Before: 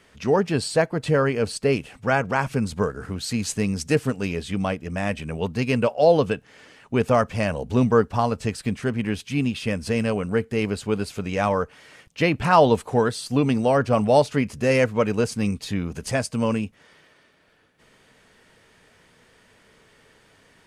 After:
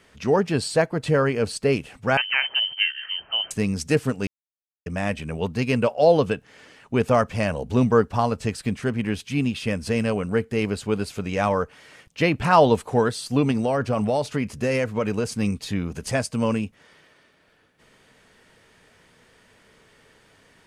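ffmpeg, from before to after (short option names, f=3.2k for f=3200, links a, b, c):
-filter_complex "[0:a]asettb=1/sr,asplit=3[a][b][c];[a]atrim=end=2.174[d];[b]atrim=start=2.17:end=3.51,asetpts=PTS-STARTPTS,afade=t=in:d=0.004:c=qsin,afade=t=out:st=1.336:d=0.004:c=qsin,lowpass=f=2.7k:t=q:w=0.5098,lowpass=f=2.7k:t=q:w=0.6013,lowpass=f=2.7k:t=q:w=0.9,lowpass=f=2.7k:t=q:w=2.563,afreqshift=-3200[e];[c]atrim=start=3.506[f];[d][e]acrossfade=d=0.004:c1=hsin:c2=qsin[g];[g][f]acrossfade=d=0.004:c1=qsin:c2=hsin,asettb=1/sr,asplit=3[h][i][j];[h]atrim=end=13.514[k];[i]atrim=start=13.51:end=15.32,asetpts=PTS-STARTPTS,afade=t=in:d=0.004:c=qsin,afade=t=out:st=1.806:d=0.004:c=qsin,acompressor=threshold=-18dB:ratio=6:attack=3.2:release=140:knee=1:detection=peak[l];[j]atrim=start=15.316[m];[k][l]acrossfade=d=0.004:c1=hsin:c2=qsin[n];[n][m]acrossfade=d=0.004:c1=qsin:c2=hsin,asplit=3[o][p][q];[o]atrim=end=4.27,asetpts=PTS-STARTPTS,afade=t=out:st=4.266:d=0.004:c=hsin[r];[p]atrim=start=4.27:end=4.86,asetpts=PTS-STARTPTS,volume=0[s];[q]atrim=start=4.86,asetpts=PTS-STARTPTS,afade=t=in:d=0.004:c=hsin[t];[r][s][t]concat=n=3:v=0:a=1"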